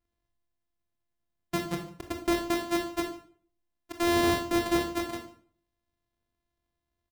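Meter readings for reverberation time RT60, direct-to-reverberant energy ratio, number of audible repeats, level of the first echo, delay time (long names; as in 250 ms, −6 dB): 0.55 s, 4.0 dB, 1, −21.0 dB, 147 ms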